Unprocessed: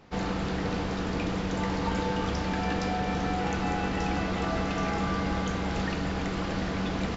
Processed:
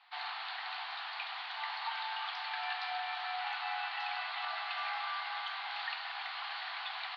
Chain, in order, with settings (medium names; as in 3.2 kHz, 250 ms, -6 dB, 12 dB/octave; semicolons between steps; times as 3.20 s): Chebyshev band-pass 740–4400 Hz, order 5; treble shelf 3 kHz +11.5 dB; trim -5.5 dB